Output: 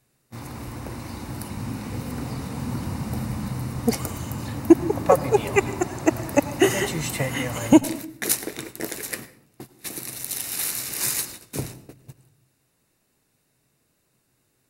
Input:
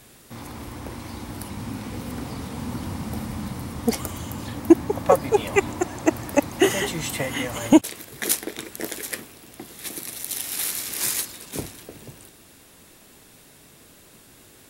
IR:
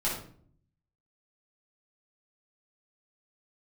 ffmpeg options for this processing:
-filter_complex "[0:a]bandreject=f=3.3k:w=7.1,agate=range=-19dB:threshold=-38dB:ratio=16:detection=peak,equalizer=f=130:w=3.7:g=8,asplit=2[a][b];[1:a]atrim=start_sample=2205,adelay=87[c];[b][c]afir=irnorm=-1:irlink=0,volume=-23dB[d];[a][d]amix=inputs=2:normalize=0"

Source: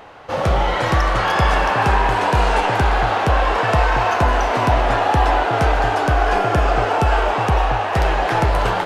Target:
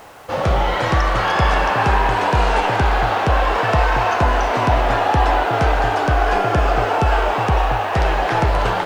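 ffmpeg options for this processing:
-filter_complex "[0:a]acrusher=bits=7:mix=0:aa=0.000001,acrossover=split=8100[a][b];[b]acompressor=threshold=-50dB:ratio=4:attack=1:release=60[c];[a][c]amix=inputs=2:normalize=0"

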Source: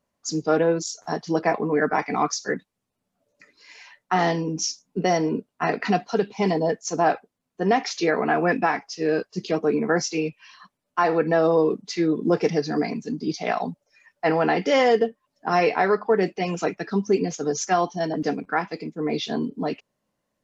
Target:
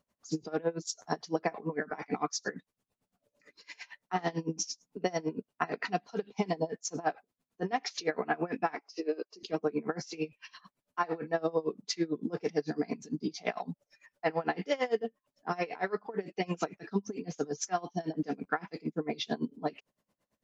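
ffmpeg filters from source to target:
-filter_complex "[0:a]acompressor=threshold=-31dB:ratio=2.5,asettb=1/sr,asplit=3[a][b][c];[a]atrim=end=8.754[d];[b]atrim=start=8.75:end=9.43,asetpts=PTS-STARTPTS,afade=t=in:d=0.004:c=qsin,afade=t=out:st=0.676:d=0.004:c=qsin,highpass=f=300:w=0.5412,highpass=f=300:w=1.3066,equalizer=f=330:t=q:w=4:g=6,equalizer=f=790:t=q:w=4:g=-4,equalizer=f=1.7k:t=q:w=4:g=-9,equalizer=f=3.4k:t=q:w=4:g=-7,lowpass=f=6k:w=0.5412,lowpass=f=6k:w=1.3066[e];[c]atrim=start=9.426[f];[d][e]acrossfade=d=0.004:c1=hsin:c2=qsin[g];[g][f]acrossfade=d=0.004:c1=qsin:c2=hsin,aeval=exprs='val(0)*pow(10,-24*(0.5-0.5*cos(2*PI*8.9*n/s))/20)':c=same,volume=3dB"

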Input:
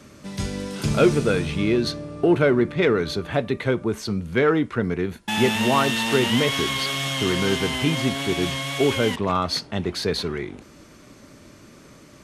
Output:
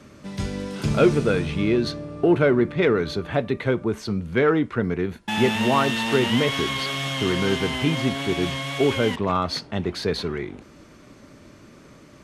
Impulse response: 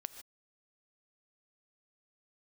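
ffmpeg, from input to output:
-af "highshelf=f=5.2k:g=-8"

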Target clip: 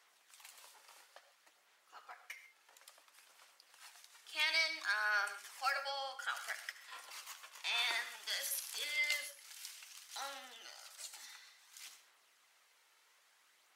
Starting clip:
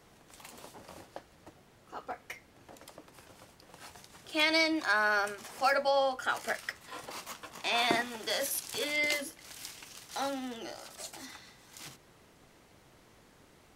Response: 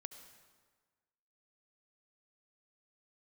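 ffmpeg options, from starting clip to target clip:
-filter_complex "[0:a]highpass=1.3k,aphaser=in_gain=1:out_gain=1:delay=2.3:decay=0.3:speed=0.58:type=sinusoidal[a];[1:a]atrim=start_sample=2205,atrim=end_sample=6615[b];[a][b]afir=irnorm=-1:irlink=0"

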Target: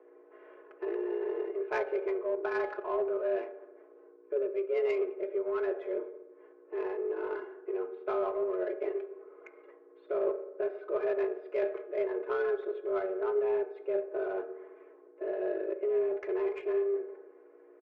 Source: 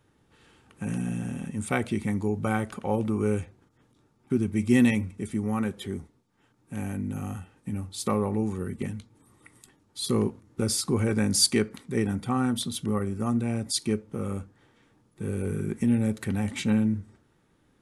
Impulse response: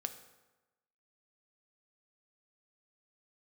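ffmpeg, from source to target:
-filter_complex "[0:a]aecho=1:1:4.6:0.88,areverse,acompressor=threshold=-33dB:ratio=4,areverse,aeval=exprs='val(0)+0.00316*(sin(2*PI*60*n/s)+sin(2*PI*2*60*n/s)/2+sin(2*PI*3*60*n/s)/3+sin(2*PI*4*60*n/s)/4+sin(2*PI*5*60*n/s)/5)':c=same,highpass=f=190:t=q:w=0.5412,highpass=f=190:t=q:w=1.307,lowpass=f=2.4k:t=q:w=0.5176,lowpass=f=2.4k:t=q:w=0.7071,lowpass=f=2.4k:t=q:w=1.932,afreqshift=180[a];[1:a]atrim=start_sample=2205[b];[a][b]afir=irnorm=-1:irlink=0,adynamicsmooth=sensitivity=3.5:basefreq=1.5k,volume=6dB"

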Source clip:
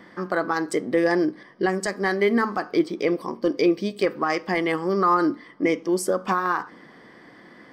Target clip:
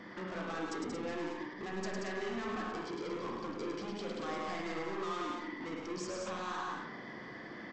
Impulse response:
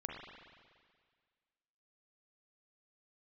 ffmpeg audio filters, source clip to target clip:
-filter_complex "[0:a]alimiter=limit=-22dB:level=0:latency=1:release=141,aresample=16000,asoftclip=type=tanh:threshold=-38.5dB,aresample=44100,aecho=1:1:105|180.8|227.4:0.631|0.562|0.447[a];[1:a]atrim=start_sample=2205,atrim=end_sample=3969[b];[a][b]afir=irnorm=-1:irlink=0,volume=1.5dB"

